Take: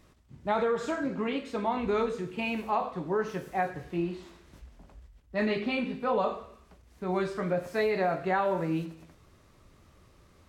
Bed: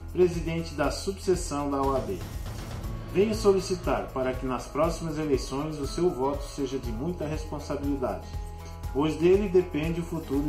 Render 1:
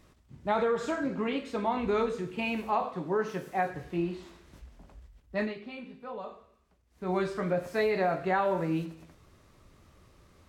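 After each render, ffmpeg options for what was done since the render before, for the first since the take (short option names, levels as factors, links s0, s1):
-filter_complex "[0:a]asettb=1/sr,asplit=3[s0][s1][s2];[s0]atrim=end=2.844[s3];[s1]atrim=start=2.84:end=3.7,asetpts=PTS-STARTPTS,afade=t=in:d=0.004:c=qsin,afade=t=out:st=0.856:d=0.004:c=qsin,highpass=110[s4];[s2]atrim=start=3.696[s5];[s3][s4]acrossfade=d=0.004:c1=hsin:c2=qsin[s6];[s6][s5]acrossfade=d=0.004:c1=qsin:c2=hsin,asplit=3[s7][s8][s9];[s7]atrim=end=5.54,asetpts=PTS-STARTPTS,afade=t=out:st=5.36:d=0.18:silence=0.237137[s10];[s8]atrim=start=5.54:end=6.9,asetpts=PTS-STARTPTS,volume=0.237[s11];[s9]atrim=start=6.9,asetpts=PTS-STARTPTS,afade=t=in:d=0.18:silence=0.237137[s12];[s10][s11][s12]concat=n=3:v=0:a=1"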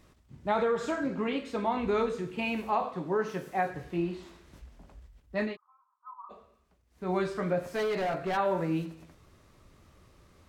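-filter_complex "[0:a]asplit=3[s0][s1][s2];[s0]afade=t=out:st=5.55:d=0.02[s3];[s1]asuperpass=centerf=1100:order=8:qfactor=2.7,afade=t=in:st=5.55:d=0.02,afade=t=out:st=6.29:d=0.02[s4];[s2]afade=t=in:st=6.29:d=0.02[s5];[s3][s4][s5]amix=inputs=3:normalize=0,asplit=3[s6][s7][s8];[s6]afade=t=out:st=7.64:d=0.02[s9];[s7]asoftclip=type=hard:threshold=0.0447,afade=t=in:st=7.64:d=0.02,afade=t=out:st=8.36:d=0.02[s10];[s8]afade=t=in:st=8.36:d=0.02[s11];[s9][s10][s11]amix=inputs=3:normalize=0"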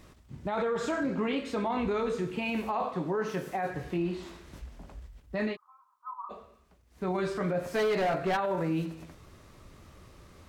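-filter_complex "[0:a]asplit=2[s0][s1];[s1]acompressor=threshold=0.0141:ratio=6,volume=0.944[s2];[s0][s2]amix=inputs=2:normalize=0,alimiter=limit=0.075:level=0:latency=1:release=11"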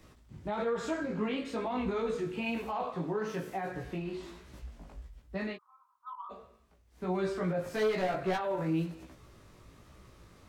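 -filter_complex "[0:a]acrossover=split=150|840|1900[s0][s1][s2][s3];[s2]asoftclip=type=tanh:threshold=0.02[s4];[s0][s1][s4][s3]amix=inputs=4:normalize=0,flanger=delay=15.5:depth=3.8:speed=1.1"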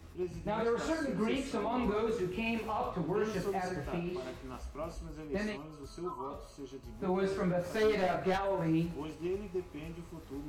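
-filter_complex "[1:a]volume=0.168[s0];[0:a][s0]amix=inputs=2:normalize=0"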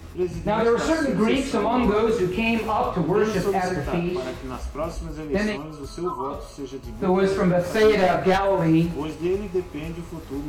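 -af "volume=3.98"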